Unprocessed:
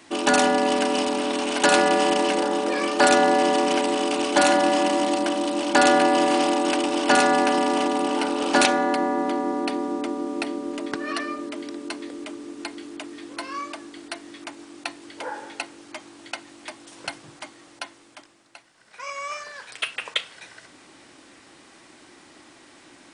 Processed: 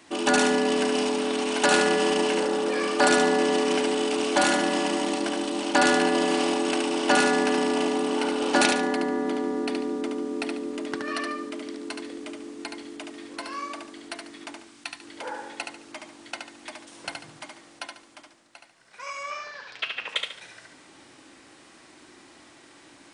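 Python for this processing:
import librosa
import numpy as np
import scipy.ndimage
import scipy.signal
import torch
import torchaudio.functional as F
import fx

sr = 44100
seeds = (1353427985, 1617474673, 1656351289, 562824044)

y = fx.peak_eq(x, sr, hz=470.0, db=-12.5, octaves=1.8, at=(14.6, 15.01))
y = fx.lowpass(y, sr, hz=5600.0, slope=24, at=(19.23, 20.09))
y = fx.echo_feedback(y, sr, ms=72, feedback_pct=32, wet_db=-4.5)
y = y * 10.0 ** (-3.0 / 20.0)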